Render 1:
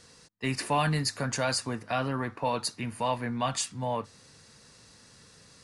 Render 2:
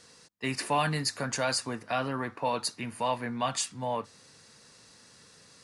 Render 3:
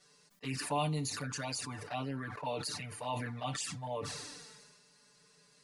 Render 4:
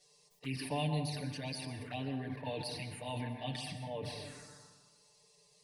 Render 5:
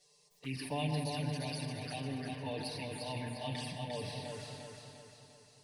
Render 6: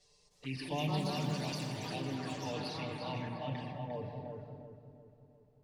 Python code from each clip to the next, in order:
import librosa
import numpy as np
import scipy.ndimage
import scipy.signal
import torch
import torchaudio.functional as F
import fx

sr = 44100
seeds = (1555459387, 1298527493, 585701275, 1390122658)

y1 = fx.low_shelf(x, sr, hz=110.0, db=-11.5)
y2 = y1 + 0.9 * np.pad(y1, (int(6.8 * sr / 1000.0), 0))[:len(y1)]
y2 = fx.env_flanger(y2, sr, rest_ms=5.5, full_db=-23.0)
y2 = fx.sustainer(y2, sr, db_per_s=33.0)
y2 = y2 * librosa.db_to_amplitude(-8.5)
y3 = fx.env_phaser(y2, sr, low_hz=220.0, high_hz=1300.0, full_db=-39.5)
y3 = fx.rev_plate(y3, sr, seeds[0], rt60_s=1.3, hf_ratio=0.3, predelay_ms=110, drr_db=6.0)
y4 = fx.echo_feedback(y3, sr, ms=350, feedback_pct=49, wet_db=-4)
y4 = y4 * librosa.db_to_amplitude(-1.0)
y5 = fx.filter_sweep_lowpass(y4, sr, from_hz=6900.0, to_hz=510.0, start_s=2.51, end_s=4.78, q=0.77)
y5 = fx.dmg_noise_colour(y5, sr, seeds[1], colour='brown', level_db=-76.0)
y5 = fx.echo_pitch(y5, sr, ms=316, semitones=4, count=3, db_per_echo=-6.0)